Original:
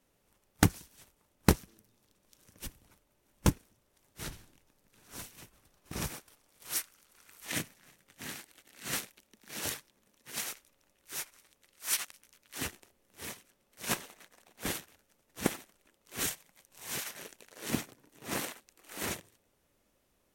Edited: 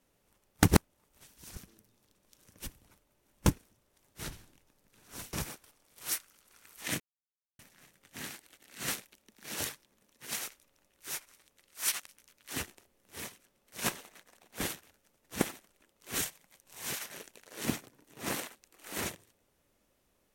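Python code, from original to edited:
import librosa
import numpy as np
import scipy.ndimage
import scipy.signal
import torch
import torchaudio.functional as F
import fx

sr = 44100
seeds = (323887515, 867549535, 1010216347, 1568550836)

y = fx.edit(x, sr, fx.reverse_span(start_s=0.68, length_s=0.89),
    fx.cut(start_s=5.33, length_s=0.64),
    fx.insert_silence(at_s=7.64, length_s=0.59), tone=tone)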